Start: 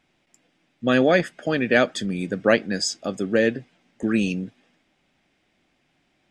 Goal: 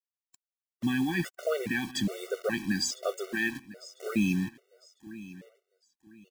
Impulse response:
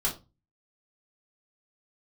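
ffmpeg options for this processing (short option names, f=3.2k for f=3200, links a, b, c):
-filter_complex "[0:a]asettb=1/sr,asplit=3[a][b][c];[a]atrim=end=3.114[d];[b]atrim=start=3.11:end=4.07,asetpts=PTS-STARTPTS,afade=t=in:d=0.004:c=qsin,afade=t=out:st=0.956:d=0.004:c=qsin,highpass=f=680:p=1[e];[c]atrim=start=4.066[f];[d][e]acrossfade=d=0.004:c1=hsin:c2=qsin[g];[g][f]acrossfade=d=0.004:c1=qsin:c2=hsin,alimiter=limit=-15.5dB:level=0:latency=1:release=56,acrusher=bits=6:mix=0:aa=0.000001,aecho=1:1:1001|2002|3003:0.126|0.0378|0.0113,afftfilt=real='re*gt(sin(2*PI*1.2*pts/sr)*(1-2*mod(floor(b*sr/1024/380),2)),0)':imag='im*gt(sin(2*PI*1.2*pts/sr)*(1-2*mod(floor(b*sr/1024/380),2)),0)':win_size=1024:overlap=0.75"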